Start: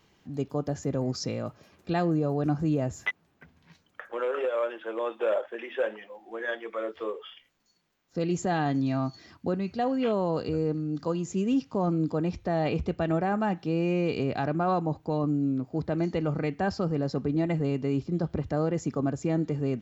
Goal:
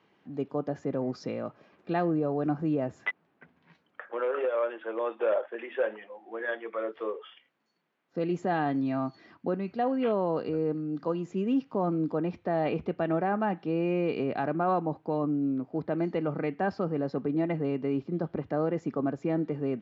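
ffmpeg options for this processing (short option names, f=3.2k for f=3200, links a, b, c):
-af "highpass=200,lowpass=2.5k"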